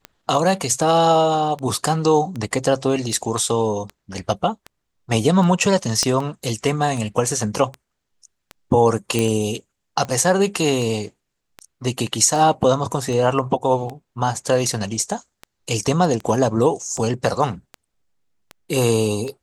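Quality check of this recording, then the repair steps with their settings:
tick 78 rpm -17 dBFS
6.03 s: pop -7 dBFS
9.19 s: pop -6 dBFS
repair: de-click

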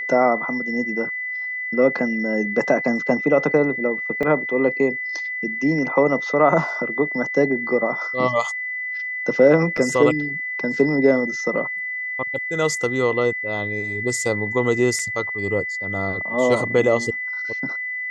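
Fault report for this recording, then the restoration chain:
whine 2 kHz -25 dBFS
4.23 s: dropout 3.1 ms
9.77–9.78 s: dropout 5.2 ms
14.99 s: dropout 2.6 ms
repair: band-stop 2 kHz, Q 30; interpolate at 4.23 s, 3.1 ms; interpolate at 9.77 s, 5.2 ms; interpolate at 14.99 s, 2.6 ms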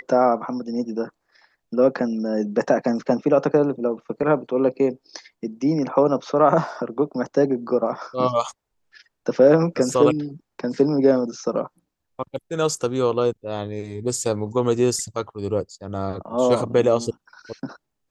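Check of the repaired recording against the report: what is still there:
nothing left

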